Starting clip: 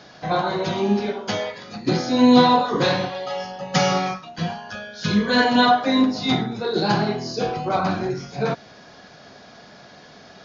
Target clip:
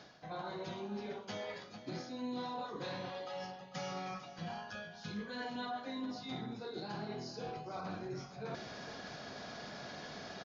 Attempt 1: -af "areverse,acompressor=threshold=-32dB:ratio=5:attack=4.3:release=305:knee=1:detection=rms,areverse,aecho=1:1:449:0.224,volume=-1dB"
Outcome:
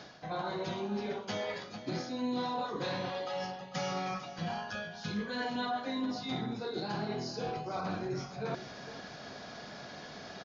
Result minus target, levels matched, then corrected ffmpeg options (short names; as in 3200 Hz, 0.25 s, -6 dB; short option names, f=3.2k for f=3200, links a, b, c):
compressor: peak gain reduction -6.5 dB
-af "areverse,acompressor=threshold=-40dB:ratio=5:attack=4.3:release=305:knee=1:detection=rms,areverse,aecho=1:1:449:0.224,volume=-1dB"